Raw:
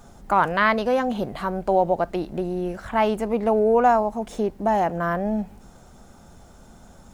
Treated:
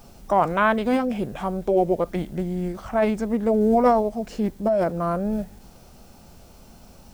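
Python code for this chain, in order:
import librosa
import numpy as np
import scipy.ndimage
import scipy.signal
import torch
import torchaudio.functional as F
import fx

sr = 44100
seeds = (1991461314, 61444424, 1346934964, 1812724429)

y = fx.quant_dither(x, sr, seeds[0], bits=10, dither='triangular')
y = fx.formant_shift(y, sr, semitones=-4)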